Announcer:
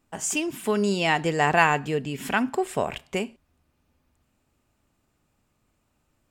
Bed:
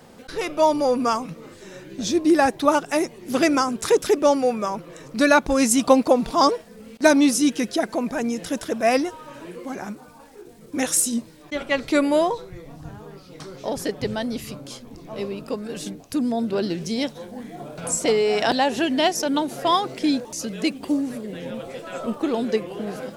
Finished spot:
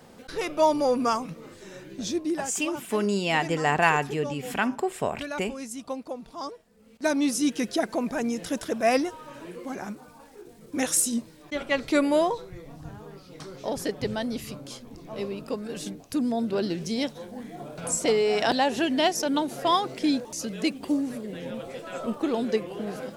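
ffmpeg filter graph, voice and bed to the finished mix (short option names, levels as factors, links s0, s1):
-filter_complex "[0:a]adelay=2250,volume=0.794[s0];[1:a]volume=4.22,afade=t=out:st=1.86:d=0.62:silence=0.16788,afade=t=in:st=6.73:d=0.98:silence=0.16788[s1];[s0][s1]amix=inputs=2:normalize=0"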